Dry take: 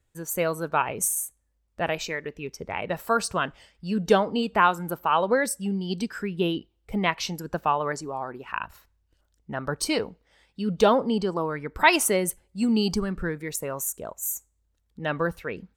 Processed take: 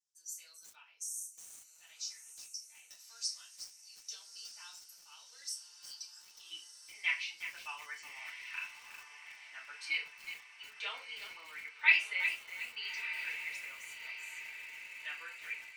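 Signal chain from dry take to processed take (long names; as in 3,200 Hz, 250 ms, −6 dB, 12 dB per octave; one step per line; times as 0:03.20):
de-essing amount 40%
four-pole ladder band-pass 5,900 Hz, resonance 70%, from 0:06.50 2,500 Hz
feedback delay with all-pass diffusion 1,271 ms, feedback 60%, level −10 dB
feedback delay network reverb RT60 0.32 s, low-frequency decay 0.75×, high-frequency decay 0.9×, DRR −5.5 dB
feedback echo at a low word length 364 ms, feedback 35%, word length 7 bits, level −9 dB
level −5.5 dB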